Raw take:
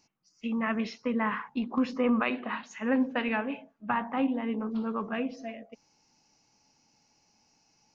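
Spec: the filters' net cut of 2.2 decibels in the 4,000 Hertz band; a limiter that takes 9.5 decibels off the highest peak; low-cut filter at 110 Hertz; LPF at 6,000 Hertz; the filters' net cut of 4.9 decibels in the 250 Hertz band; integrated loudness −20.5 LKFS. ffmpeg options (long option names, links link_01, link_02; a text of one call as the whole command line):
ffmpeg -i in.wav -af "highpass=110,lowpass=6000,equalizer=frequency=250:width_type=o:gain=-5,equalizer=frequency=4000:width_type=o:gain=-3,volume=16dB,alimiter=limit=-10dB:level=0:latency=1" out.wav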